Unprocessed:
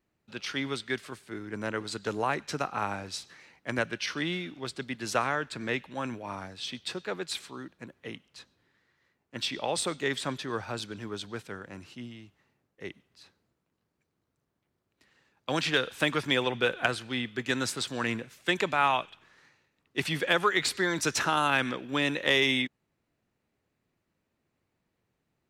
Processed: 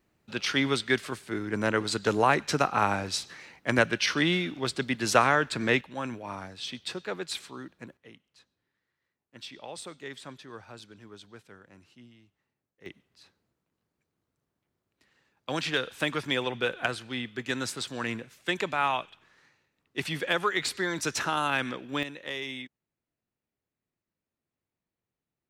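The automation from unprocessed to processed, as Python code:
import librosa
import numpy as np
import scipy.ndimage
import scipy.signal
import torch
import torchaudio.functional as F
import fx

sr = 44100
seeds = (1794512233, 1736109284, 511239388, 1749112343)

y = fx.gain(x, sr, db=fx.steps((0.0, 6.5), (5.81, 0.0), (7.97, -11.0), (12.86, -2.0), (22.03, -11.5)))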